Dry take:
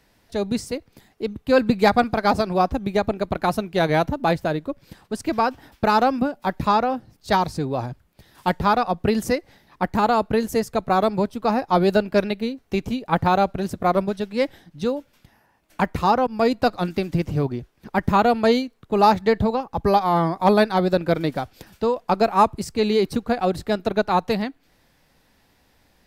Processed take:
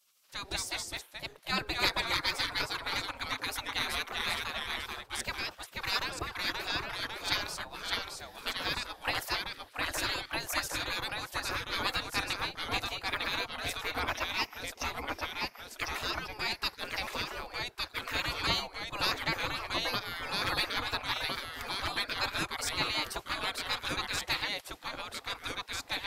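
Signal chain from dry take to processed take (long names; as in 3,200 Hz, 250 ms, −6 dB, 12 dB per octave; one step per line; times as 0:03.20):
0:13.98–0:14.91: EQ curve with evenly spaced ripples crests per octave 0.8, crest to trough 17 dB
delay with pitch and tempo change per echo 171 ms, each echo −1 semitone, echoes 2
gate on every frequency bin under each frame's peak −20 dB weak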